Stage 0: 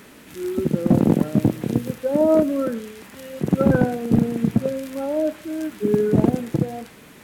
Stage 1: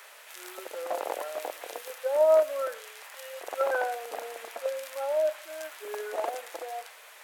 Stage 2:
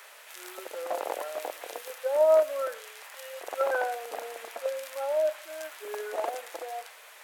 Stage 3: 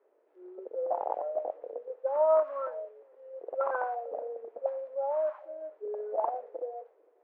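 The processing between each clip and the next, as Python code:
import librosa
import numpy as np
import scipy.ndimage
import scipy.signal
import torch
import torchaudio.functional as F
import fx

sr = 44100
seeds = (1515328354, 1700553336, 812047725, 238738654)

y1 = scipy.signal.sosfilt(scipy.signal.butter(6, 570.0, 'highpass', fs=sr, output='sos'), x)
y1 = y1 * 10.0 ** (-1.0 / 20.0)
y2 = y1
y3 = y2 + 10.0 ** (-23.5 / 20.0) * np.pad(y2, (int(454 * sr / 1000.0), 0))[:len(y2)]
y3 = fx.envelope_lowpass(y3, sr, base_hz=340.0, top_hz=1100.0, q=4.0, full_db=-25.0, direction='up')
y3 = y3 * 10.0 ** (-7.0 / 20.0)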